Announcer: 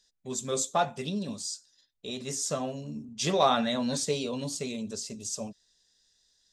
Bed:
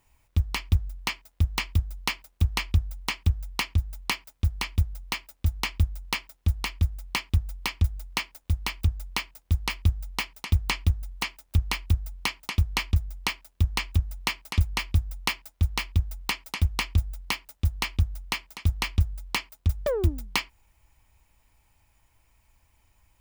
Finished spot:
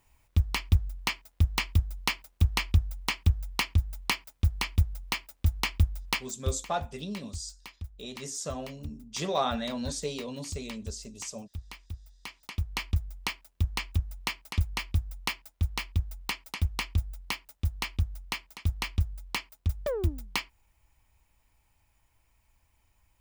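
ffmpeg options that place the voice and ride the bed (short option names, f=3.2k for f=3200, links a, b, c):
-filter_complex "[0:a]adelay=5950,volume=-4.5dB[a];[1:a]volume=12dB,afade=t=out:st=6.27:d=0.36:silence=0.149624,afade=t=in:st=12.18:d=0.76:silence=0.237137[b];[a][b]amix=inputs=2:normalize=0"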